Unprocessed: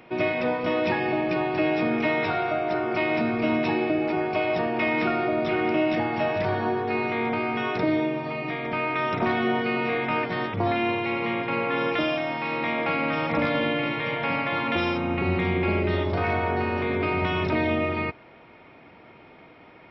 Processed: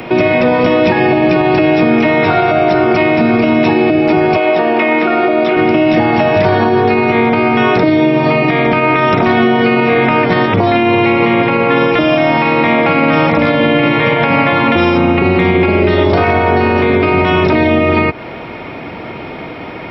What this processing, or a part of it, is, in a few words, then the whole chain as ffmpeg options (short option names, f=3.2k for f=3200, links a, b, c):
mastering chain: -filter_complex "[0:a]equalizer=f=1.5k:t=o:w=2.5:g=-3,acrossover=split=200|2500[a][b][c];[a]acompressor=threshold=-38dB:ratio=4[d];[b]acompressor=threshold=-28dB:ratio=4[e];[c]acompressor=threshold=-46dB:ratio=4[f];[d][e][f]amix=inputs=3:normalize=0,acompressor=threshold=-35dB:ratio=2,alimiter=level_in=26dB:limit=-1dB:release=50:level=0:latency=1,asettb=1/sr,asplit=3[g][h][i];[g]atrim=end=4.374[j];[h]atrim=start=4.37:end=5.57,asetpts=PTS-STARTPTS,afade=t=in:d=0.004:c=qsin,afade=t=out:st=1.196:d=0.004:c=qsin,acrossover=split=230 4800:gain=0.1 1 0.2[k][l][m];[k][l][m]amix=inputs=3:normalize=0[n];[i]atrim=start=5.566[o];[j][n]acrossfade=d=0.004:c1=hsin:c2=qsin[p];[p][o]acrossfade=d=0.004:c1=qsin:c2=hsin,volume=-1dB"